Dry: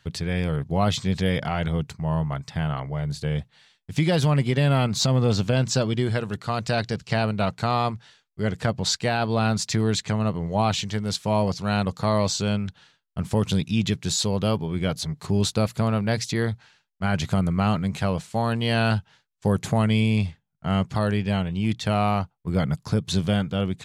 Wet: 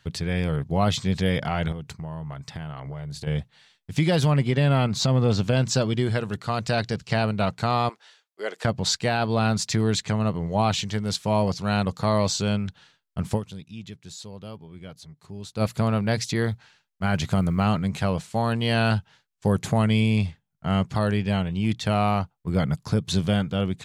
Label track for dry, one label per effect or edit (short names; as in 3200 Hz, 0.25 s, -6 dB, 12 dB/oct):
1.720000	3.270000	compressor 10:1, threshold -30 dBFS
4.320000	5.440000	high shelf 6000 Hz -6.5 dB
7.890000	8.650000	HPF 390 Hz 24 dB/oct
13.350000	15.620000	dip -16 dB, fades 0.37 s exponential
16.440000	17.650000	short-mantissa float mantissa of 6-bit